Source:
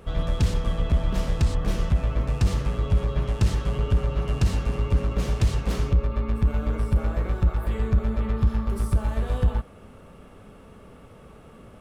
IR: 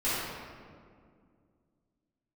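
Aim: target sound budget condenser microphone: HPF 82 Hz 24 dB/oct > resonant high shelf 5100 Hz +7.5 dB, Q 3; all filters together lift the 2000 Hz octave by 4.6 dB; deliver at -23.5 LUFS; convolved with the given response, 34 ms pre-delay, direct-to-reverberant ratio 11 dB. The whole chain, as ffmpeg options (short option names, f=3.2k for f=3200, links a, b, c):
-filter_complex "[0:a]equalizer=f=2k:t=o:g=7.5,asplit=2[a][b];[1:a]atrim=start_sample=2205,adelay=34[c];[b][c]afir=irnorm=-1:irlink=0,volume=-22dB[d];[a][d]amix=inputs=2:normalize=0,highpass=f=82:w=0.5412,highpass=f=82:w=1.3066,highshelf=f=5.1k:t=q:w=3:g=7.5,volume=5dB"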